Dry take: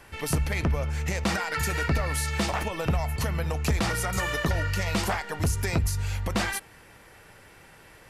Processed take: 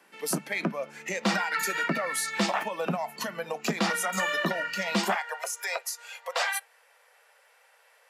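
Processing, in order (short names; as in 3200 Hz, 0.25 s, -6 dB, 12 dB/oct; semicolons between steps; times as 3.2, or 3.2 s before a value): spectral noise reduction 10 dB; steep high-pass 170 Hz 72 dB/oct, from 5.14 s 470 Hz; gain +2 dB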